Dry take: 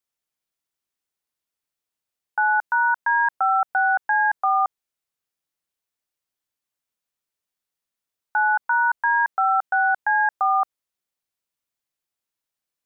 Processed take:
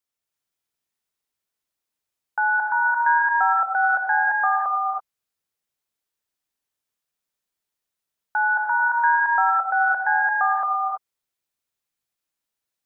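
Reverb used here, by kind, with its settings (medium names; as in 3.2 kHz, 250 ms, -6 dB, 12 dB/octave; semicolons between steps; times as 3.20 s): gated-style reverb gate 350 ms rising, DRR 0 dB; trim -1.5 dB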